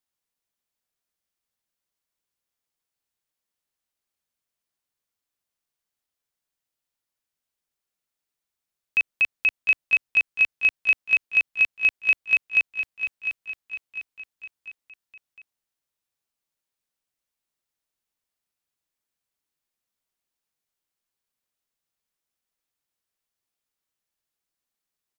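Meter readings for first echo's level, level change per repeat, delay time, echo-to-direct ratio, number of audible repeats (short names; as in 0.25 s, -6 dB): -9.0 dB, -6.0 dB, 0.702 s, -8.0 dB, 4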